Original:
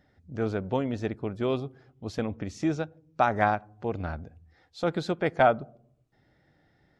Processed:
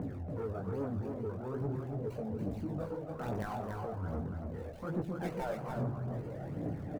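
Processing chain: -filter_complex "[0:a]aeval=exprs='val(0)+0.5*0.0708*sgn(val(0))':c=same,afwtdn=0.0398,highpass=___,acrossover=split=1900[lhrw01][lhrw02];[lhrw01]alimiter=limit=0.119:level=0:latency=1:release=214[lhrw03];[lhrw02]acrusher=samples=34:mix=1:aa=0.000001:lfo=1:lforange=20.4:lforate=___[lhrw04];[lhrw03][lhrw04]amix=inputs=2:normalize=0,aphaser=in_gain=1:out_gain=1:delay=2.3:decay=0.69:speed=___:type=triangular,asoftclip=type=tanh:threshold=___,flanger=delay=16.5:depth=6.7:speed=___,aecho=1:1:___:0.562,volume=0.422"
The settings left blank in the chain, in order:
110, 2.2, 1.2, 0.141, 2.4, 284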